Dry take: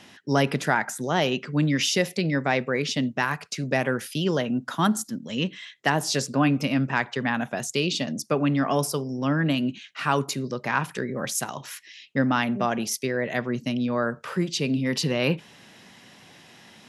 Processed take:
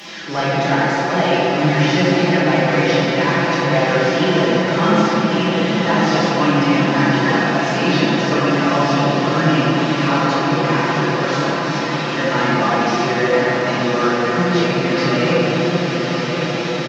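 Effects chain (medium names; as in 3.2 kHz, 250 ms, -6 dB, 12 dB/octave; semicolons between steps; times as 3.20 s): one-bit delta coder 32 kbps, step -32.5 dBFS; high-pass 280 Hz 6 dB/octave; comb 5.9 ms; echo that smears into a reverb 1110 ms, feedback 68%, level -6 dB; simulated room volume 220 m³, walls hard, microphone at 1.3 m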